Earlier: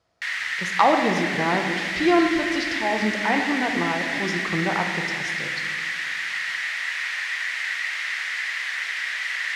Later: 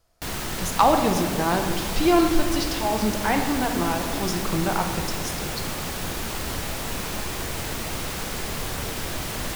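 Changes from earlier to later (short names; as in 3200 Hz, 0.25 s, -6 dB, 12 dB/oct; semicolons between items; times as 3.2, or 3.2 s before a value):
background: remove resonant high-pass 1900 Hz, resonance Q 7.2; master: remove BPF 100–4800 Hz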